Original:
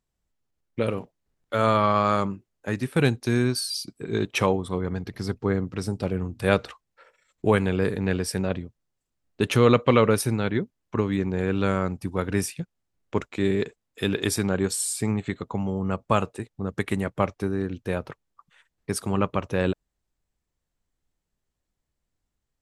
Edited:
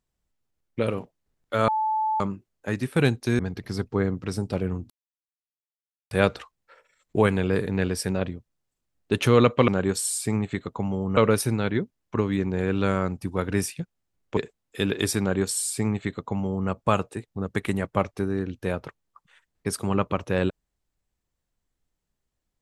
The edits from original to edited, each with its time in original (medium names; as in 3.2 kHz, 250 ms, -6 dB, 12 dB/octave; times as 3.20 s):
1.68–2.20 s: bleep 870 Hz -21.5 dBFS
3.39–4.89 s: delete
6.40 s: insert silence 1.21 s
13.17–13.60 s: delete
14.43–15.92 s: copy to 9.97 s